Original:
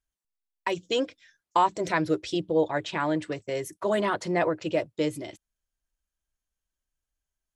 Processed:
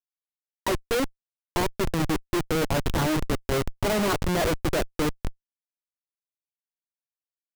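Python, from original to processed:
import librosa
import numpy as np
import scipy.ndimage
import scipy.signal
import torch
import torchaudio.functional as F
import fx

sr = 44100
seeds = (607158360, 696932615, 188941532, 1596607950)

y = fx.spec_box(x, sr, start_s=1.4, length_s=0.91, low_hz=410.0, high_hz=5800.0, gain_db=-10)
y = fx.schmitt(y, sr, flips_db=-28.0)
y = F.gain(torch.from_numpy(y), 7.5).numpy()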